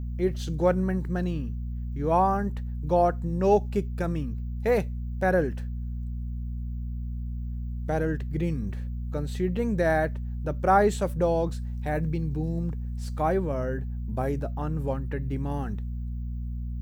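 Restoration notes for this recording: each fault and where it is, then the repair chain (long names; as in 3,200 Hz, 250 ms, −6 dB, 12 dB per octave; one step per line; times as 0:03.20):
mains hum 60 Hz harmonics 4 −32 dBFS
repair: hum removal 60 Hz, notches 4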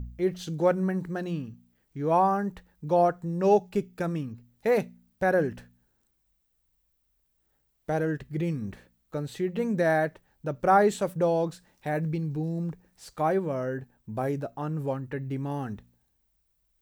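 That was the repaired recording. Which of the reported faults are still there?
none of them is left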